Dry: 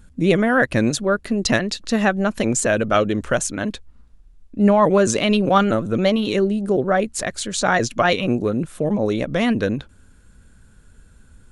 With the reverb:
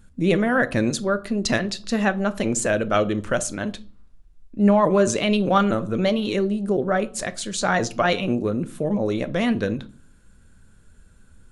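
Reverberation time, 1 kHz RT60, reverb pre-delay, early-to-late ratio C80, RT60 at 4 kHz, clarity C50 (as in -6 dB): 0.45 s, 0.40 s, 5 ms, 24.5 dB, 0.30 s, 19.5 dB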